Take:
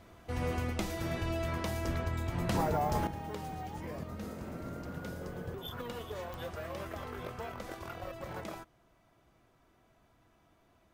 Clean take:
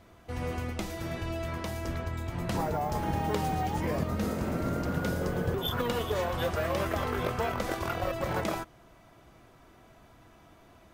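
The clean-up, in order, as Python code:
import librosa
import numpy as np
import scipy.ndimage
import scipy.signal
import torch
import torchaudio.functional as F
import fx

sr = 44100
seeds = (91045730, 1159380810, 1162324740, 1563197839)

y = fx.fix_declick_ar(x, sr, threshold=10.0)
y = fx.fix_level(y, sr, at_s=3.07, step_db=11.0)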